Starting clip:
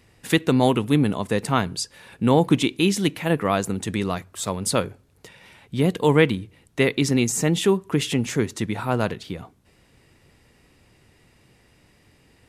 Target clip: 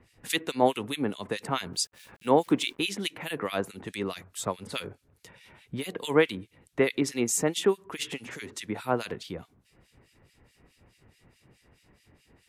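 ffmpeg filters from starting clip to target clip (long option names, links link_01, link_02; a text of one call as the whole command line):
ffmpeg -i in.wav -filter_complex "[0:a]acrossover=split=270[link_01][link_02];[link_01]acompressor=threshold=-36dB:ratio=6[link_03];[link_03][link_02]amix=inputs=2:normalize=0,asettb=1/sr,asplit=3[link_04][link_05][link_06];[link_04]atrim=end=1.734[link_07];[link_05]atrim=start=1.73:end=2.8,asetpts=PTS-STARTPTS,afade=type=in:duration=0.004:curve=qsin,afade=type=out:start_time=1.066:duration=0.004:curve=qsin,aeval=exprs='val(0)*gte(abs(val(0)),0.00531)':channel_layout=same[link_08];[link_06]atrim=start=2.796[link_09];[link_07][link_08]acrossfade=duration=0.004:curve1=hsin:curve2=qsin[link_10];[link_10][link_09]acrossfade=duration=0.004:curve1=qsin:curve2=hsin,acrossover=split=2000[link_11][link_12];[link_11]aeval=exprs='val(0)*(1-1/2+1/2*cos(2*PI*4.7*n/s))':channel_layout=same[link_13];[link_12]aeval=exprs='val(0)*(1-1/2-1/2*cos(2*PI*4.7*n/s))':channel_layout=same[link_14];[link_13][link_14]amix=inputs=2:normalize=0" out.wav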